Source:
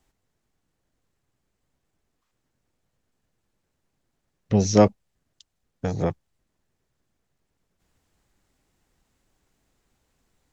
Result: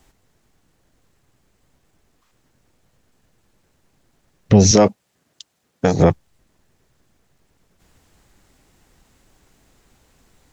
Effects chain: 4.71–6 Bessel high-pass 190 Hz, order 2; maximiser +14.5 dB; gain -1 dB

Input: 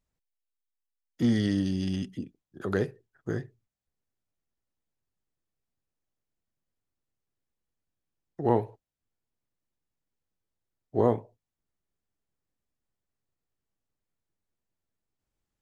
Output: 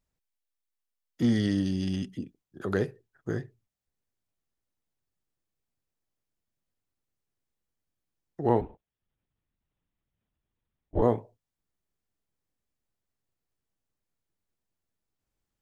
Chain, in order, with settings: 8.61–11.02 LPC vocoder at 8 kHz whisper

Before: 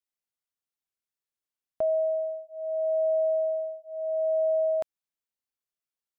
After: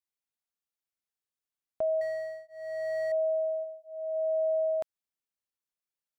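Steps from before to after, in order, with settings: 2.01–3.12 median filter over 41 samples; 3.63–4.14 bell 150 Hz -> 69 Hz -11 dB 2.9 oct; gain -3 dB

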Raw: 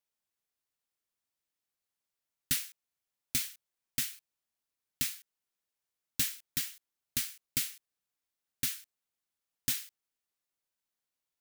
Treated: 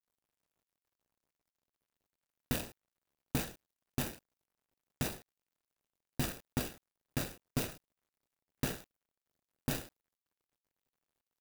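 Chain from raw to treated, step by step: median filter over 41 samples; high shelf 8600 Hz +8.5 dB; limiter -35 dBFS, peak gain reduction 9.5 dB; gain +15.5 dB

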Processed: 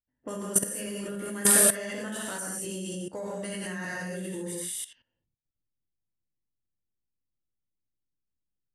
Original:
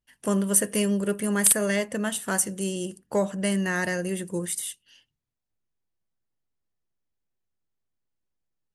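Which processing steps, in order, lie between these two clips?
non-linear reverb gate 0.24 s flat, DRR -5.5 dB; low-pass opened by the level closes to 350 Hz, open at -23.5 dBFS; level quantiser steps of 16 dB; gain -3 dB

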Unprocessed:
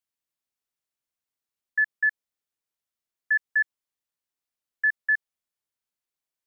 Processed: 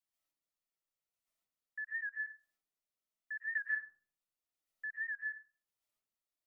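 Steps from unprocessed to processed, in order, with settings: notch 1600 Hz, Q 13; limiter -23.5 dBFS, peak gain reduction 6 dB; chopper 0.88 Hz, depth 60%, duty 15%; reverb RT60 0.60 s, pre-delay 95 ms, DRR -6.5 dB; record warp 78 rpm, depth 100 cents; gain -5 dB

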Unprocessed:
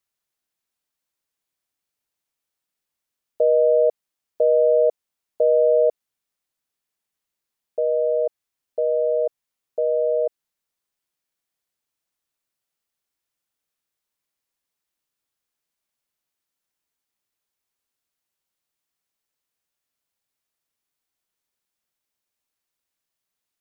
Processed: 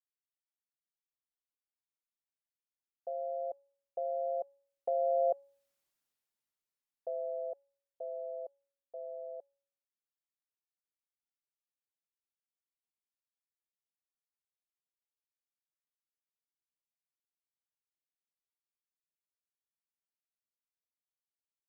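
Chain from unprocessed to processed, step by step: Doppler pass-by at 6.25, 6 m/s, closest 1.7 m; in parallel at +2.5 dB: compressor, threshold -34 dBFS, peak gain reduction 13 dB; on the sum: speed mistake 44.1 kHz file played as 48 kHz; resonator 280 Hz, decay 0.6 s, harmonics all, mix 60%

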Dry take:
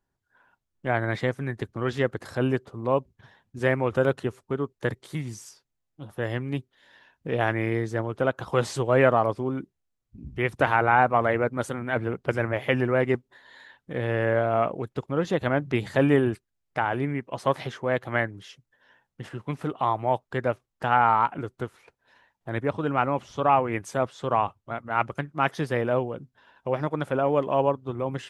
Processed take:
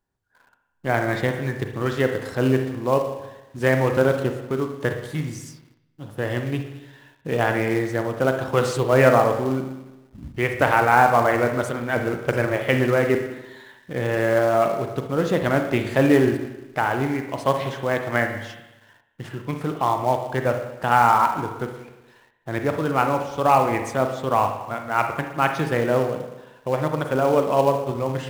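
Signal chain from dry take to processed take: spring tank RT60 1 s, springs 38/58 ms, chirp 30 ms, DRR 5 dB; in parallel at -8 dB: companded quantiser 4-bit

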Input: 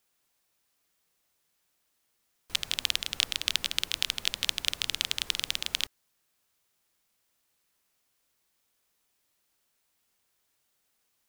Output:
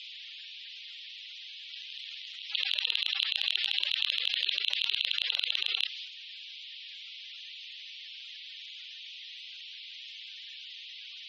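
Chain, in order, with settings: per-bin compression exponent 0.4; steep high-pass 360 Hz 36 dB/oct; reverse echo 0.812 s -21.5 dB; in parallel at +1.5 dB: compressor, threshold -39 dBFS, peak gain reduction 20 dB; on the sum: loudest bins only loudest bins 64; air absorption 94 m; transient shaper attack -3 dB, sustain +9 dB

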